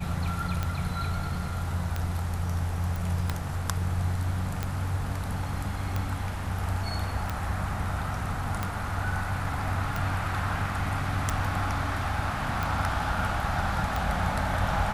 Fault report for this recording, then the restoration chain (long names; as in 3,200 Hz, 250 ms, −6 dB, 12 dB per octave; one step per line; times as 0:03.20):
scratch tick 45 rpm −15 dBFS
0:02.96: click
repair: click removal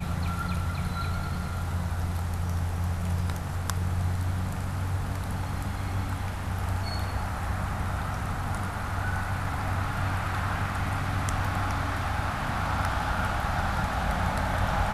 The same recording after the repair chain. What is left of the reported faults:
none of them is left